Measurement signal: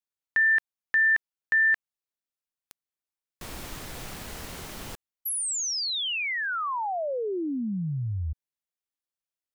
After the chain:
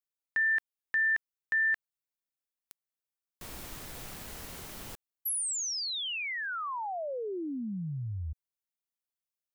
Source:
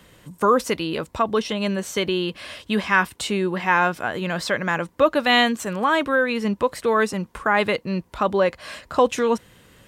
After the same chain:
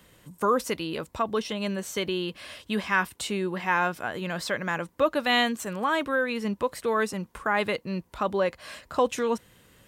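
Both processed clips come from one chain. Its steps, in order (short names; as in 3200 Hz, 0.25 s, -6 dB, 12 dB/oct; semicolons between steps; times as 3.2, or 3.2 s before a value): high shelf 10000 Hz +7 dB; gain -6 dB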